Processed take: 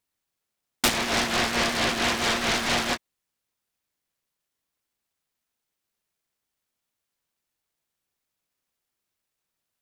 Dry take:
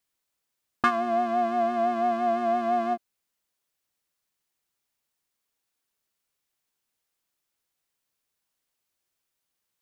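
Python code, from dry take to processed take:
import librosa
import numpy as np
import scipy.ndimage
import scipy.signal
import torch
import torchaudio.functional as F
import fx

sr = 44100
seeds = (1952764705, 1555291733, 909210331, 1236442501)

y = fx.noise_mod_delay(x, sr, seeds[0], noise_hz=1300.0, depth_ms=0.39)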